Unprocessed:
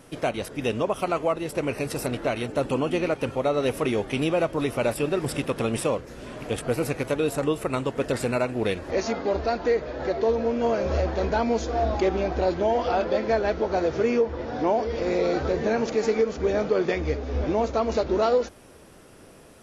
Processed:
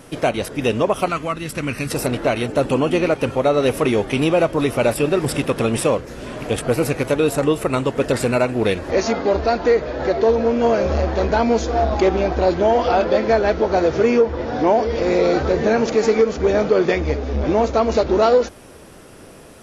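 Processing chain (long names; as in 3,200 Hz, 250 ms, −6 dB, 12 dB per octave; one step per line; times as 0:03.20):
0:01.08–0:01.91: flat-topped bell 570 Hz −10.5 dB
saturating transformer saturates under 270 Hz
level +7.5 dB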